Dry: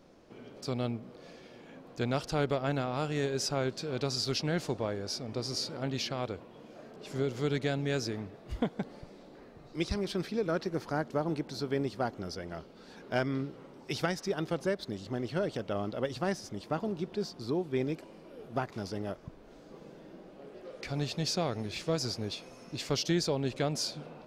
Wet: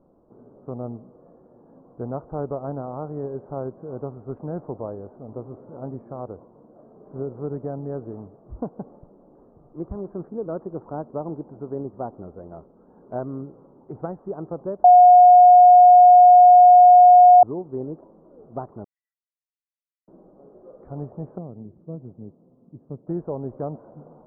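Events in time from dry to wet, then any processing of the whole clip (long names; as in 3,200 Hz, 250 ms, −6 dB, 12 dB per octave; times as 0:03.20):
0:14.84–0:17.43: beep over 720 Hz −9 dBFS
0:18.84–0:20.08: Chebyshev high-pass with heavy ripple 1,900 Hz, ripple 9 dB
0:21.38–0:23.07: resonant band-pass 180 Hz, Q 1.2
whole clip: adaptive Wiener filter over 15 samples; Butterworth low-pass 1,200 Hz 36 dB per octave; dynamic equaliser 690 Hz, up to +3 dB, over −45 dBFS, Q 0.71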